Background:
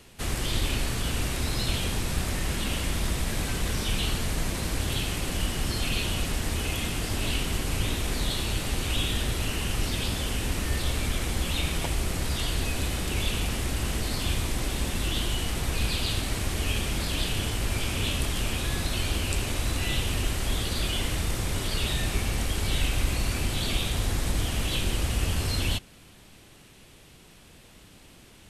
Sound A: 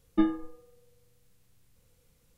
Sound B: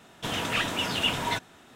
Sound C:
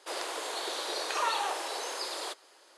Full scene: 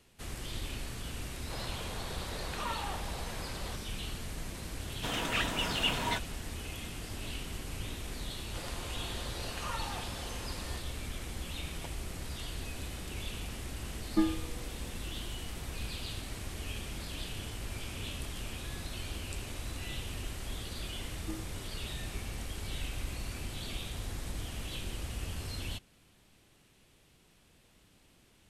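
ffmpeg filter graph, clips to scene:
ffmpeg -i bed.wav -i cue0.wav -i cue1.wav -i cue2.wav -filter_complex "[3:a]asplit=2[link_01][link_02];[1:a]asplit=2[link_03][link_04];[0:a]volume=-12dB[link_05];[link_01]lowpass=4700[link_06];[link_02]aecho=1:1:5.7:0.41[link_07];[link_03]dynaudnorm=framelen=160:gausssize=7:maxgain=11.5dB[link_08];[link_06]atrim=end=2.77,asetpts=PTS-STARTPTS,volume=-7.5dB,afade=type=in:duration=0.004:curve=hsin,afade=type=out:start_time=2.766:duration=0.004:curve=hsin,adelay=1430[link_09];[2:a]atrim=end=1.75,asetpts=PTS-STARTPTS,volume=-4.5dB,afade=type=in:duration=0.004:curve=hsin,afade=type=out:start_time=1.746:duration=0.004:curve=hsin,adelay=4800[link_10];[link_07]atrim=end=2.77,asetpts=PTS-STARTPTS,volume=-10dB,afade=type=in:duration=0.004:curve=hsin,afade=type=out:start_time=2.766:duration=0.004:curve=hsin,adelay=8470[link_11];[link_08]atrim=end=2.37,asetpts=PTS-STARTPTS,volume=-4dB,afade=type=in:duration=0.004:curve=hsin,afade=type=out:start_time=2.366:duration=0.004:curve=hsin,adelay=13990[link_12];[link_04]atrim=end=2.37,asetpts=PTS-STARTPTS,volume=-18dB,afade=type=in:duration=0.004:curve=hsin,afade=type=out:start_time=2.366:duration=0.004:curve=hsin,adelay=21100[link_13];[link_05][link_09][link_10][link_11][link_12][link_13]amix=inputs=6:normalize=0" out.wav

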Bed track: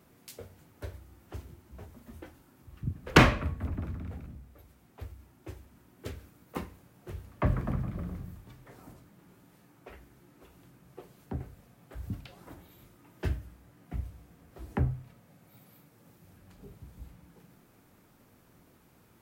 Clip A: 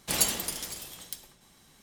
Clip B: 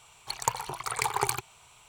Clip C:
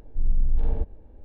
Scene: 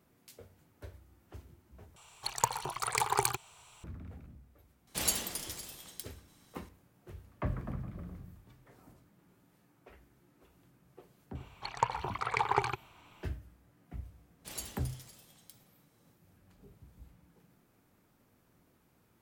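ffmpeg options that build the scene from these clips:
ffmpeg -i bed.wav -i cue0.wav -i cue1.wav -filter_complex "[2:a]asplit=2[link_01][link_02];[1:a]asplit=2[link_03][link_04];[0:a]volume=-7.5dB[link_05];[link_01]equalizer=frequency=2200:width=7.1:gain=-3.5[link_06];[link_02]lowpass=2900[link_07];[link_05]asplit=2[link_08][link_09];[link_08]atrim=end=1.964[link_10];[link_06]atrim=end=1.88,asetpts=PTS-STARTPTS,volume=-1.5dB[link_11];[link_09]atrim=start=3.836[link_12];[link_03]atrim=end=1.82,asetpts=PTS-STARTPTS,volume=-5.5dB,afade=type=in:duration=0.004:curve=hsin,afade=type=out:start_time=1.816:duration=0.004:curve=hsin,adelay=4870[link_13];[link_07]atrim=end=1.88,asetpts=PTS-STARTPTS,volume=-0.5dB,afade=type=in:duration=0.004:curve=hsin,afade=type=out:start_time=1.876:duration=0.004:curve=hsin,adelay=11350[link_14];[link_04]atrim=end=1.82,asetpts=PTS-STARTPTS,volume=-17dB,afade=type=in:duration=0.1,afade=type=out:start_time=1.72:duration=0.1,adelay=14370[link_15];[link_10][link_11]acrossfade=duration=0.004:curve1=hsin:curve2=hsin[link_16];[link_16][link_12]acrossfade=duration=0.004:curve1=hsin:curve2=hsin[link_17];[link_17][link_13][link_14][link_15]amix=inputs=4:normalize=0" out.wav

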